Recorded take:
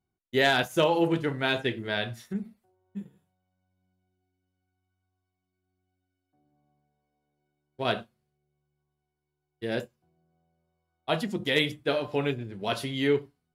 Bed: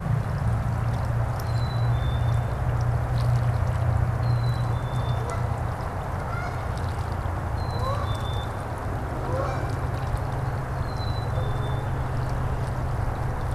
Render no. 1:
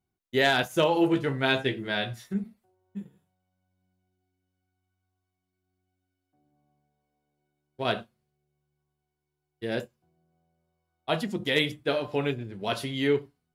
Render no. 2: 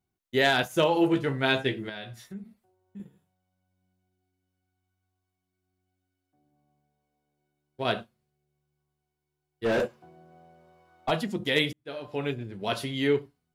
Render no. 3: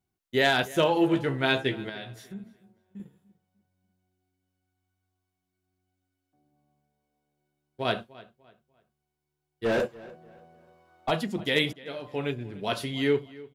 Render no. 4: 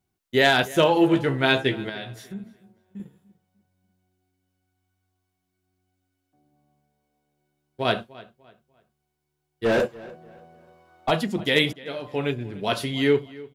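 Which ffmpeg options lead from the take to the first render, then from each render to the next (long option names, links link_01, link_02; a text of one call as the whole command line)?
ffmpeg -i in.wav -filter_complex "[0:a]asettb=1/sr,asplit=3[link_01][link_02][link_03];[link_01]atrim=end=0.954[link_04];[link_02]atrim=start=0.95:end=2.44,asetpts=PTS-STARTPTS,afade=type=in:duration=0.004:curve=qsin,afade=type=out:start_time=1.486:duration=0.004:curve=qsin,asplit=2[link_05][link_06];[link_06]adelay=15,volume=-6.5dB[link_07];[link_05][link_07]amix=inputs=2:normalize=0,atrim=end_sample=65709[link_08];[link_03]atrim=start=2.436[link_09];[link_04][link_08]acrossfade=duration=0.004:curve1=hsin:curve2=qsin[link_10];[link_10][link_09]acrossfade=duration=0.004:curve1=qsin:curve2=hsin" out.wav
ffmpeg -i in.wav -filter_complex "[0:a]asettb=1/sr,asplit=3[link_01][link_02][link_03];[link_01]atrim=end=1.894[link_04];[link_02]atrim=start=1.89:end=3,asetpts=PTS-STARTPTS,afade=type=in:duration=0.004:curve=qsin,afade=type=out:start_time=1.106:duration=0.004:curve=qsin,acompressor=threshold=-44dB:ratio=2:attack=3.2:release=140:knee=1:detection=peak[link_05];[link_03]atrim=start=2.996[link_06];[link_04][link_05]acrossfade=duration=0.004:curve1=hsin:curve2=qsin[link_07];[link_07][link_06]acrossfade=duration=0.004:curve1=qsin:curve2=hsin,asplit=3[link_08][link_09][link_10];[link_08]afade=type=out:start_time=9.64:duration=0.02[link_11];[link_09]asplit=2[link_12][link_13];[link_13]highpass=frequency=720:poles=1,volume=33dB,asoftclip=type=tanh:threshold=-16dB[link_14];[link_12][link_14]amix=inputs=2:normalize=0,lowpass=frequency=1000:poles=1,volume=-6dB,afade=type=in:start_time=9.64:duration=0.02,afade=type=out:start_time=11.1:duration=0.02[link_15];[link_10]afade=type=in:start_time=11.1:duration=0.02[link_16];[link_11][link_15][link_16]amix=inputs=3:normalize=0,asplit=2[link_17][link_18];[link_17]atrim=end=11.73,asetpts=PTS-STARTPTS,afade=type=out:start_time=11.726:duration=0.004:curve=hsin[link_19];[link_18]atrim=start=11.73,asetpts=PTS-STARTPTS,afade=type=in:duration=0.7[link_20];[link_19][link_20]concat=n=2:v=0:a=1" out.wav
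ffmpeg -i in.wav -filter_complex "[0:a]asplit=2[link_01][link_02];[link_02]adelay=296,lowpass=frequency=3800:poles=1,volume=-20dB,asplit=2[link_03][link_04];[link_04]adelay=296,lowpass=frequency=3800:poles=1,volume=0.32,asplit=2[link_05][link_06];[link_06]adelay=296,lowpass=frequency=3800:poles=1,volume=0.32[link_07];[link_01][link_03][link_05][link_07]amix=inputs=4:normalize=0" out.wav
ffmpeg -i in.wav -af "volume=4.5dB" out.wav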